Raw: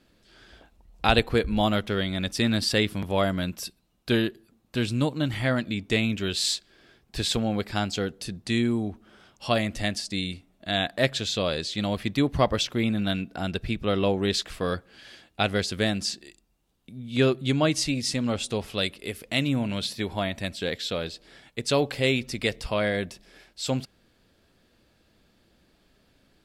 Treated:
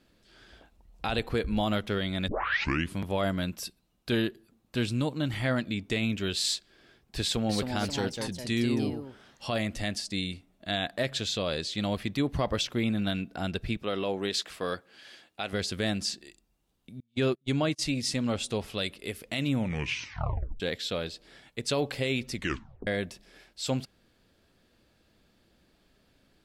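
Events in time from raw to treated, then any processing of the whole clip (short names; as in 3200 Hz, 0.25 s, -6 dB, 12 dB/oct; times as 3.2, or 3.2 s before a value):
2.28 tape start 0.69 s
7.21–9.46 echoes that change speed 0.281 s, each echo +2 st, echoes 2, each echo -6 dB
13.77–15.53 HPF 330 Hz 6 dB/oct
17–17.83 gate -27 dBFS, range -36 dB
19.55 tape stop 1.05 s
22.35 tape stop 0.52 s
whole clip: limiter -15.5 dBFS; gain -2.5 dB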